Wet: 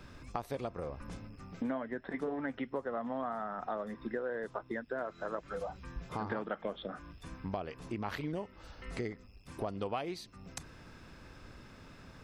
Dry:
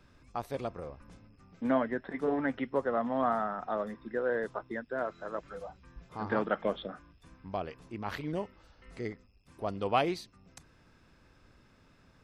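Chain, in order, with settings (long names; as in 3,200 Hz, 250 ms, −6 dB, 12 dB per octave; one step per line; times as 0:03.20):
downward compressor 6 to 1, threshold −44 dBFS, peak gain reduction 20.5 dB
level +9 dB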